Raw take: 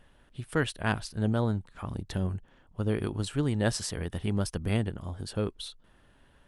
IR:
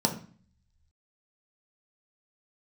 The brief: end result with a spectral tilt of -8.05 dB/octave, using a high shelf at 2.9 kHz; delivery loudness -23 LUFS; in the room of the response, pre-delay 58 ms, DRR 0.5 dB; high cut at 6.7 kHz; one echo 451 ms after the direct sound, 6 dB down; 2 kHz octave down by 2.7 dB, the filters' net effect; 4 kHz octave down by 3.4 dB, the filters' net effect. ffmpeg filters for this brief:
-filter_complex "[0:a]lowpass=6700,equalizer=f=2000:t=o:g=-4,highshelf=f=2900:g=4,equalizer=f=4000:t=o:g=-6,aecho=1:1:451:0.501,asplit=2[s0][s1];[1:a]atrim=start_sample=2205,adelay=58[s2];[s1][s2]afir=irnorm=-1:irlink=0,volume=0.299[s3];[s0][s3]amix=inputs=2:normalize=0,volume=1.12"

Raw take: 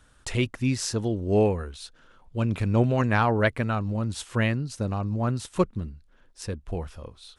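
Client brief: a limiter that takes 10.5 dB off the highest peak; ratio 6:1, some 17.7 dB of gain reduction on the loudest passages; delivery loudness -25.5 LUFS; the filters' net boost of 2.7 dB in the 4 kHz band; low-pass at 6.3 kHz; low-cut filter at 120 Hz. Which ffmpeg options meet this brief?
-af "highpass=120,lowpass=6300,equalizer=f=4000:t=o:g=4.5,acompressor=threshold=0.0158:ratio=6,volume=7.94,alimiter=limit=0.211:level=0:latency=1"

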